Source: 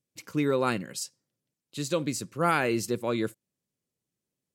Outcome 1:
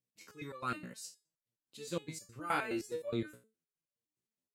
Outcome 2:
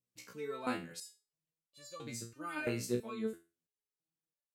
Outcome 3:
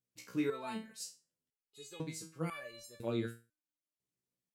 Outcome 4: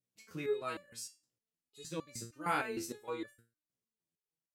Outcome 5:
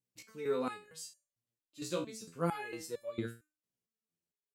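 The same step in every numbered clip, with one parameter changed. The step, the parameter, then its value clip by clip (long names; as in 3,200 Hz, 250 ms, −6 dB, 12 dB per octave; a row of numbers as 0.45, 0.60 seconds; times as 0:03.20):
step-sequenced resonator, speed: 9.6, 3, 2, 6.5, 4.4 Hertz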